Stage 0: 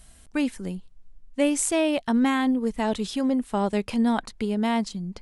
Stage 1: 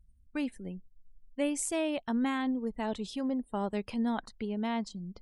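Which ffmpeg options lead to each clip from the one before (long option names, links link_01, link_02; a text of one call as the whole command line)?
ffmpeg -i in.wav -af "afftdn=noise_reduction=34:noise_floor=-46,volume=-8.5dB" out.wav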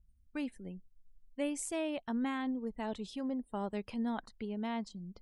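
ffmpeg -i in.wav -af "adynamicequalizer=threshold=0.00251:dfrequency=4000:dqfactor=0.7:tfrequency=4000:tqfactor=0.7:attack=5:release=100:ratio=0.375:range=2:mode=cutabove:tftype=highshelf,volume=-4.5dB" out.wav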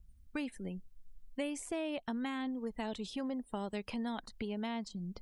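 ffmpeg -i in.wav -filter_complex "[0:a]acrossover=split=640|2400[link_01][link_02][link_03];[link_01]acompressor=threshold=-46dB:ratio=4[link_04];[link_02]acompressor=threshold=-53dB:ratio=4[link_05];[link_03]acompressor=threshold=-55dB:ratio=4[link_06];[link_04][link_05][link_06]amix=inputs=3:normalize=0,volume=7.5dB" out.wav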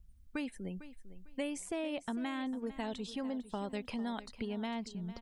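ffmpeg -i in.wav -af "aecho=1:1:451|902|1353:0.178|0.0427|0.0102" out.wav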